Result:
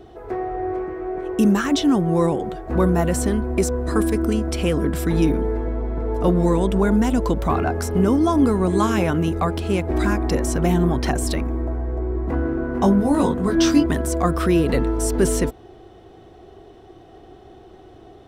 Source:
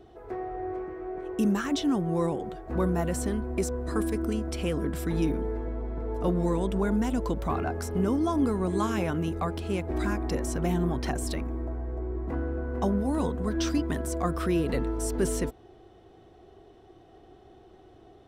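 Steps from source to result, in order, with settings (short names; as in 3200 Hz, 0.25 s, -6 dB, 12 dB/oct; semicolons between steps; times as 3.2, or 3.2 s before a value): 12.43–13.86 doubler 21 ms -3 dB; gain +8.5 dB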